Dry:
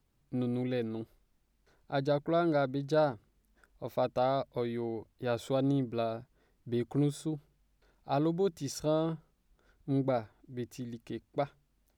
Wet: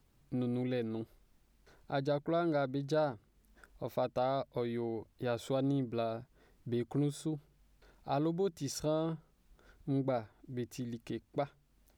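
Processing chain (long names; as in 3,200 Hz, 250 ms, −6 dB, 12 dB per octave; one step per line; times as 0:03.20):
downward compressor 1.5 to 1, threshold −50 dBFS, peak gain reduction 10 dB
level +5 dB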